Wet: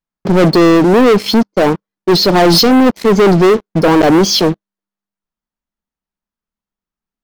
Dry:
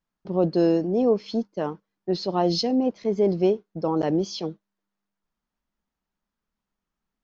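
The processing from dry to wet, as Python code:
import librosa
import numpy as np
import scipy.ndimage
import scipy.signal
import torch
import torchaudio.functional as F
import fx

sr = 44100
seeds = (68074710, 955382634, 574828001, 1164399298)

y = fx.leveller(x, sr, passes=5)
y = y * librosa.db_to_amplitude(5.0)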